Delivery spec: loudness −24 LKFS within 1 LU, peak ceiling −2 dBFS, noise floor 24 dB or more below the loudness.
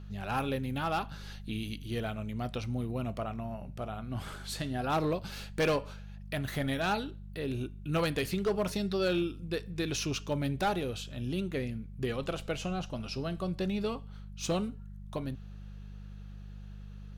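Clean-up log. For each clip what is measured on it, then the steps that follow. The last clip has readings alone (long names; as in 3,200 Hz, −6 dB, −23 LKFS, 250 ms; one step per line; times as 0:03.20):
share of clipped samples 0.6%; peaks flattened at −23.5 dBFS; mains hum 50 Hz; hum harmonics up to 200 Hz; level of the hum −42 dBFS; integrated loudness −34.5 LKFS; sample peak −23.5 dBFS; target loudness −24.0 LKFS
→ clipped peaks rebuilt −23.5 dBFS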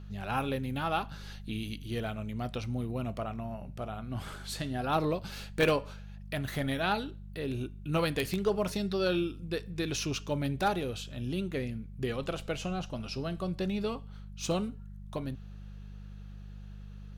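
share of clipped samples 0.0%; mains hum 50 Hz; hum harmonics up to 200 Hz; level of the hum −42 dBFS
→ hum removal 50 Hz, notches 4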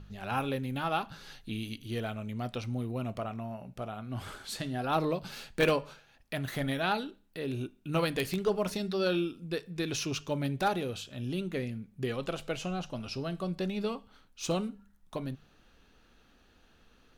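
mains hum none found; integrated loudness −34.0 LKFS; sample peak −14.0 dBFS; target loudness −24.0 LKFS
→ level +10 dB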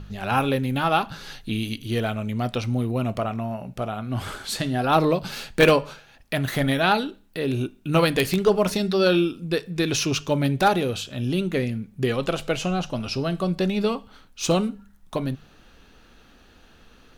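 integrated loudness −24.0 LKFS; sample peak −4.0 dBFS; background noise floor −53 dBFS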